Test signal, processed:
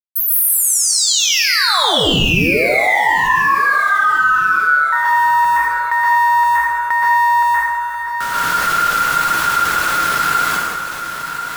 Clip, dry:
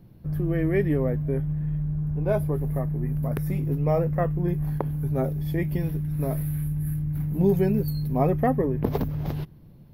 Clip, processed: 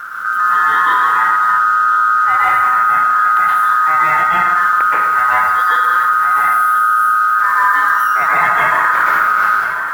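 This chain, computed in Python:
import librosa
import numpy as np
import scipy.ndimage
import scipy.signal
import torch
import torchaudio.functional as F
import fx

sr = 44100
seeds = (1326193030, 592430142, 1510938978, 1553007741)

p1 = fx.quant_companded(x, sr, bits=6)
p2 = fx.low_shelf(p1, sr, hz=77.0, db=10.0)
p3 = p2 * np.sin(2.0 * np.pi * 1400.0 * np.arange(len(p2)) / sr)
p4 = fx.rev_plate(p3, sr, seeds[0], rt60_s=0.97, hf_ratio=0.85, predelay_ms=110, drr_db=-8.5)
p5 = fx.rider(p4, sr, range_db=3, speed_s=0.5)
p6 = p5 + fx.echo_feedback(p5, sr, ms=1038, feedback_pct=44, wet_db=-18.0, dry=0)
p7 = fx.env_flatten(p6, sr, amount_pct=50)
y = F.gain(torch.from_numpy(p7), 1.0).numpy()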